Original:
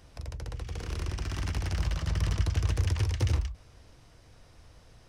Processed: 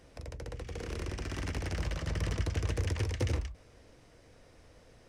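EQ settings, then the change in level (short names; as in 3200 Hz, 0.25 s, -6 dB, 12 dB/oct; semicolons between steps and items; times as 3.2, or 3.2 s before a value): graphic EQ 250/500/2000/8000 Hz +6/+9/+6/+4 dB; -6.0 dB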